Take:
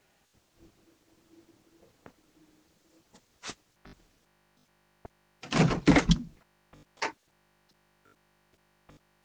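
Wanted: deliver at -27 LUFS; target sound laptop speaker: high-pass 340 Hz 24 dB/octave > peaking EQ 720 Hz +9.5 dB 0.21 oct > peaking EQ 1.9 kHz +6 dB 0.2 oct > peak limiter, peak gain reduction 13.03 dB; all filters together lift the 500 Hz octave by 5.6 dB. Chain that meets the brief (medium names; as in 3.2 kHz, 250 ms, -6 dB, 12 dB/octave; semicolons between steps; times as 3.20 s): high-pass 340 Hz 24 dB/octave; peaking EQ 500 Hz +6 dB; peaking EQ 720 Hz +9.5 dB 0.21 oct; peaking EQ 1.9 kHz +6 dB 0.2 oct; trim +9 dB; peak limiter -11 dBFS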